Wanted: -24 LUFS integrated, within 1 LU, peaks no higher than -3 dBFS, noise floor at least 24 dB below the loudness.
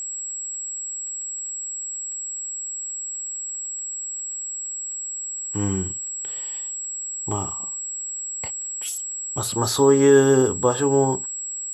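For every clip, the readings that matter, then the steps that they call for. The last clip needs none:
ticks 25/s; steady tone 7700 Hz; tone level -28 dBFS; loudness -23.5 LUFS; peak -5.0 dBFS; loudness target -24.0 LUFS
-> de-click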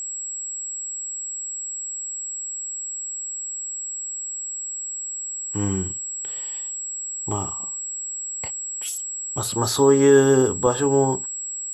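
ticks 0.085/s; steady tone 7700 Hz; tone level -28 dBFS
-> notch 7700 Hz, Q 30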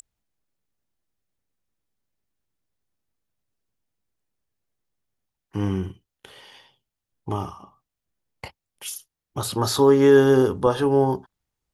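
steady tone none; loudness -20.0 LUFS; peak -6.0 dBFS; loudness target -24.0 LUFS
-> gain -4 dB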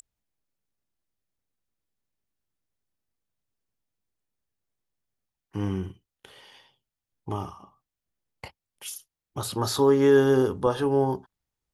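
loudness -24.0 LUFS; peak -10.0 dBFS; noise floor -89 dBFS

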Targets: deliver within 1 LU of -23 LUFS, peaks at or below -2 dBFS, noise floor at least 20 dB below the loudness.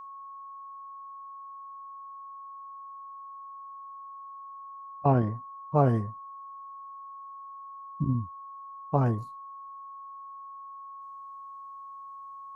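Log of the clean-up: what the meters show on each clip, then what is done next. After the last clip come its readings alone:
steady tone 1100 Hz; tone level -41 dBFS; loudness -34.5 LUFS; peak -9.5 dBFS; loudness target -23.0 LUFS
-> notch 1100 Hz, Q 30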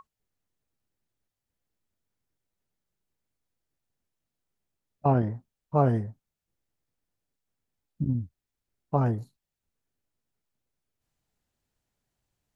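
steady tone none; loudness -28.0 LUFS; peak -9.5 dBFS; loudness target -23.0 LUFS
-> gain +5 dB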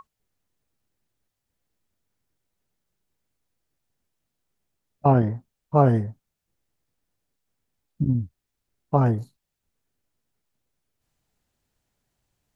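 loudness -23.0 LUFS; peak -4.5 dBFS; noise floor -82 dBFS

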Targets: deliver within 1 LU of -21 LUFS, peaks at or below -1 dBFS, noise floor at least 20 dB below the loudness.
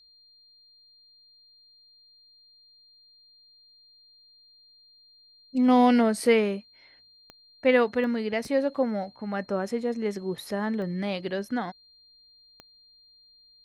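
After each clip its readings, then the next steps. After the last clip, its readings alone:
clicks 5; steady tone 4200 Hz; tone level -55 dBFS; loudness -26.0 LUFS; peak -9.0 dBFS; loudness target -21.0 LUFS
-> de-click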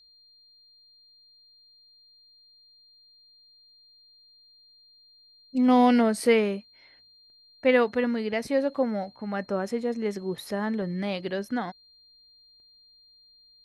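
clicks 0; steady tone 4200 Hz; tone level -55 dBFS
-> notch 4200 Hz, Q 30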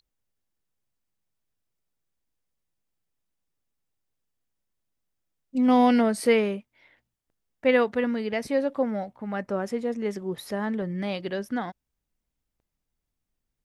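steady tone none; loudness -26.0 LUFS; peak -9.0 dBFS; loudness target -21.0 LUFS
-> gain +5 dB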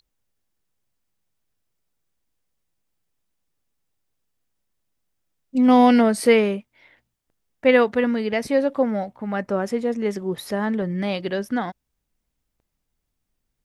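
loudness -21.0 LUFS; peak -4.0 dBFS; noise floor -78 dBFS

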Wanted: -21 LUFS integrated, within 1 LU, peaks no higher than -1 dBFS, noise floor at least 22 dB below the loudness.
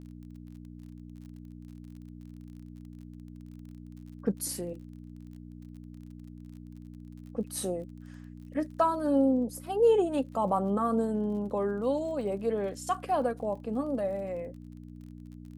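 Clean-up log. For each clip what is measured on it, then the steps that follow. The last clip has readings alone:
ticks 39/s; hum 60 Hz; harmonics up to 300 Hz; hum level -43 dBFS; loudness -30.0 LUFS; peak -14.0 dBFS; loudness target -21.0 LUFS
-> de-click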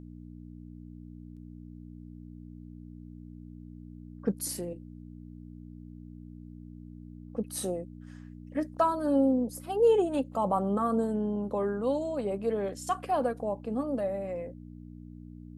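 ticks 0.064/s; hum 60 Hz; harmonics up to 300 Hz; hum level -43 dBFS
-> de-hum 60 Hz, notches 5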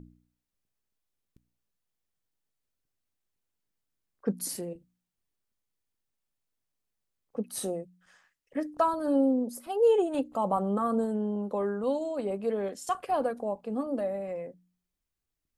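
hum none; loudness -30.0 LUFS; peak -14.0 dBFS; loudness target -21.0 LUFS
-> gain +9 dB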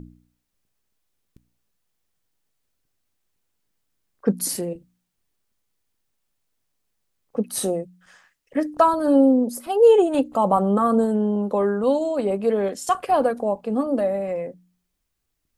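loudness -21.0 LUFS; peak -5.0 dBFS; noise floor -76 dBFS

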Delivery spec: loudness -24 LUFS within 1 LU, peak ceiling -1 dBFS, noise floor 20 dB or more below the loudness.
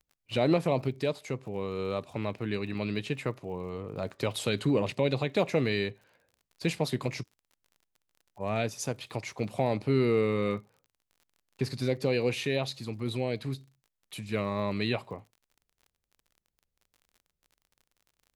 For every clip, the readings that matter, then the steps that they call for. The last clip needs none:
ticks 40/s; loudness -31.0 LUFS; peak -13.0 dBFS; loudness target -24.0 LUFS
-> de-click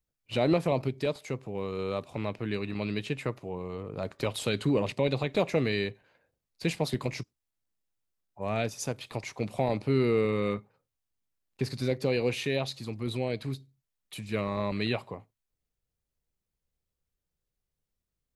ticks 0/s; loudness -31.0 LUFS; peak -13.0 dBFS; loudness target -24.0 LUFS
-> gain +7 dB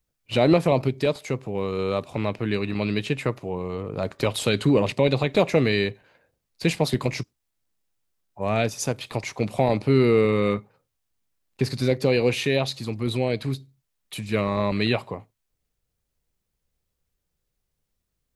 loudness -24.0 LUFS; peak -6.0 dBFS; noise floor -79 dBFS

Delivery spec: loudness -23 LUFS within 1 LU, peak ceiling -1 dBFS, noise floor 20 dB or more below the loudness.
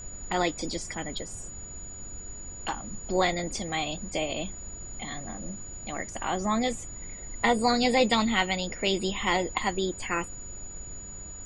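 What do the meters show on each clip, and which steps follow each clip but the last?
steady tone 6900 Hz; tone level -41 dBFS; noise floor -42 dBFS; noise floor target -49 dBFS; loudness -29.0 LUFS; peak -9.5 dBFS; loudness target -23.0 LUFS
-> notch 6900 Hz, Q 30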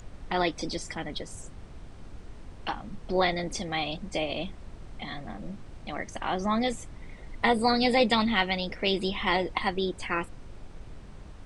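steady tone none; noise floor -46 dBFS; noise floor target -49 dBFS
-> noise print and reduce 6 dB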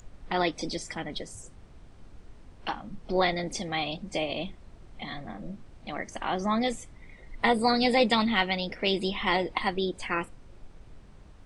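noise floor -52 dBFS; loudness -28.5 LUFS; peak -9.5 dBFS; loudness target -23.0 LUFS
-> gain +5.5 dB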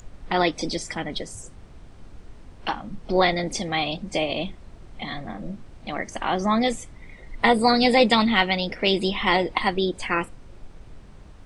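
loudness -23.5 LUFS; peak -4.5 dBFS; noise floor -46 dBFS

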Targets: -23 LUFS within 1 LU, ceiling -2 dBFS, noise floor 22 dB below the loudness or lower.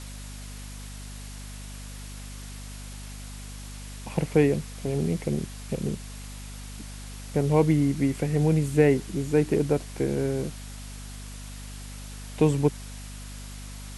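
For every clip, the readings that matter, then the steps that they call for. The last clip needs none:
hum 50 Hz; harmonics up to 250 Hz; hum level -38 dBFS; noise floor -40 dBFS; noise floor target -48 dBFS; loudness -25.5 LUFS; peak -6.5 dBFS; loudness target -23.0 LUFS
-> de-hum 50 Hz, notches 5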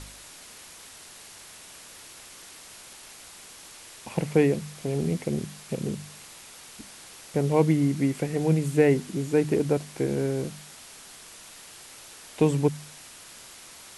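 hum none; noise floor -47 dBFS; noise floor target -48 dBFS
-> noise print and reduce 6 dB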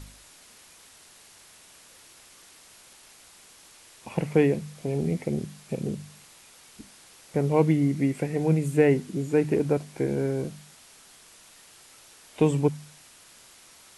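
noise floor -53 dBFS; loudness -26.0 LUFS; peak -7.0 dBFS; loudness target -23.0 LUFS
-> gain +3 dB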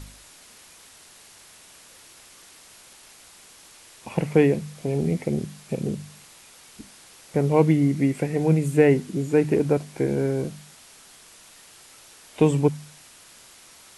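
loudness -23.0 LUFS; peak -4.0 dBFS; noise floor -50 dBFS

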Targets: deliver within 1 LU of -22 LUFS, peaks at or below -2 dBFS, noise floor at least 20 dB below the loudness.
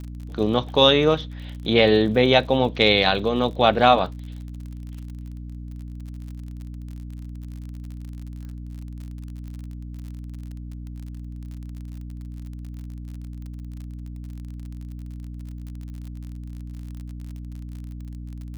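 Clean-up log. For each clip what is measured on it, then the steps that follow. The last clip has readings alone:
ticks 44/s; hum 60 Hz; harmonics up to 300 Hz; hum level -32 dBFS; loudness -19.0 LUFS; peak -1.5 dBFS; loudness target -22.0 LUFS
-> de-click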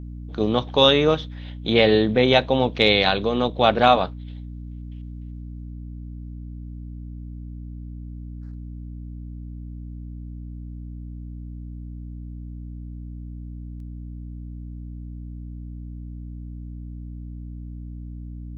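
ticks 0.054/s; hum 60 Hz; harmonics up to 300 Hz; hum level -33 dBFS
-> notches 60/120/180/240/300 Hz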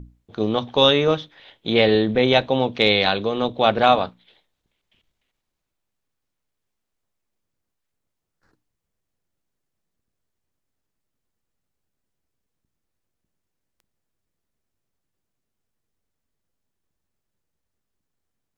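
hum none; loudness -19.0 LUFS; peak -1.5 dBFS; loudness target -22.0 LUFS
-> gain -3 dB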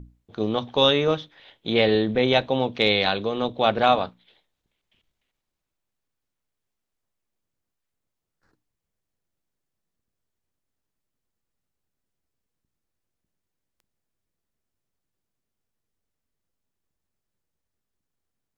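loudness -22.0 LUFS; peak -4.5 dBFS; noise floor -83 dBFS

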